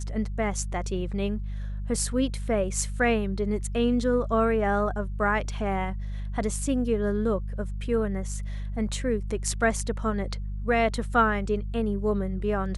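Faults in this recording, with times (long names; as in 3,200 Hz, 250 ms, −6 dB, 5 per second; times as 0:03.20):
mains hum 50 Hz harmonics 4 −32 dBFS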